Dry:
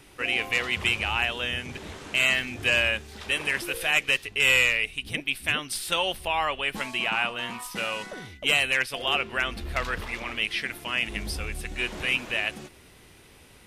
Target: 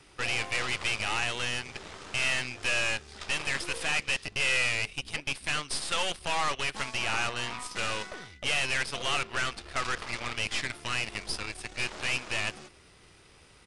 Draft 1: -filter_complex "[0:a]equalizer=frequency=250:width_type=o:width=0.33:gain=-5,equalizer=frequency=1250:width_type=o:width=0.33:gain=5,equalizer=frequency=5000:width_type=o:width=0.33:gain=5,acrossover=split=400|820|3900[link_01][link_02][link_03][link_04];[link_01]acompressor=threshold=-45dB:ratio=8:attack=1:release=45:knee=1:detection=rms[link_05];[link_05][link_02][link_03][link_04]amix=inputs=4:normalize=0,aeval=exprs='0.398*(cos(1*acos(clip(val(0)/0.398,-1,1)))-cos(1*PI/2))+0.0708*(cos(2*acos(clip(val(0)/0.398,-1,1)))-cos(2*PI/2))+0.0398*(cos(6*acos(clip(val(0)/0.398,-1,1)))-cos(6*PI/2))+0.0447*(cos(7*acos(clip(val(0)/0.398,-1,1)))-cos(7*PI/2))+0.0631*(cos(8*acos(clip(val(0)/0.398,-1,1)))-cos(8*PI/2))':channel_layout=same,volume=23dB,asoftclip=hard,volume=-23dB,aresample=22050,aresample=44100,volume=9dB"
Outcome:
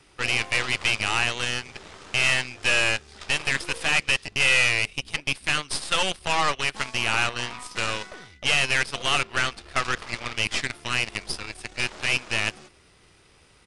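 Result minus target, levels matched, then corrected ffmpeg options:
gain into a clipping stage and back: distortion −4 dB
-filter_complex "[0:a]equalizer=frequency=250:width_type=o:width=0.33:gain=-5,equalizer=frequency=1250:width_type=o:width=0.33:gain=5,equalizer=frequency=5000:width_type=o:width=0.33:gain=5,acrossover=split=400|820|3900[link_01][link_02][link_03][link_04];[link_01]acompressor=threshold=-45dB:ratio=8:attack=1:release=45:knee=1:detection=rms[link_05];[link_05][link_02][link_03][link_04]amix=inputs=4:normalize=0,aeval=exprs='0.398*(cos(1*acos(clip(val(0)/0.398,-1,1)))-cos(1*PI/2))+0.0708*(cos(2*acos(clip(val(0)/0.398,-1,1)))-cos(2*PI/2))+0.0398*(cos(6*acos(clip(val(0)/0.398,-1,1)))-cos(6*PI/2))+0.0447*(cos(7*acos(clip(val(0)/0.398,-1,1)))-cos(7*PI/2))+0.0631*(cos(8*acos(clip(val(0)/0.398,-1,1)))-cos(8*PI/2))':channel_layout=same,volume=31.5dB,asoftclip=hard,volume=-31.5dB,aresample=22050,aresample=44100,volume=9dB"

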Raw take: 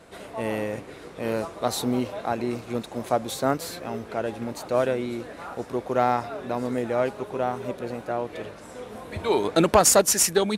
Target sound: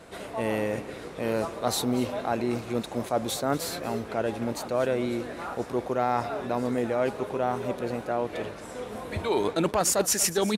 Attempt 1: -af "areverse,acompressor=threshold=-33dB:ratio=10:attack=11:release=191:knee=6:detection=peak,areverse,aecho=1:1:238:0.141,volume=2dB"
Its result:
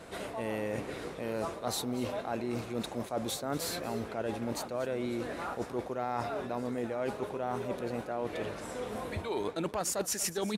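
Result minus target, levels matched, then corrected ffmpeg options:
downward compressor: peak gain reduction +9 dB
-af "areverse,acompressor=threshold=-23dB:ratio=10:attack=11:release=191:knee=6:detection=peak,areverse,aecho=1:1:238:0.141,volume=2dB"

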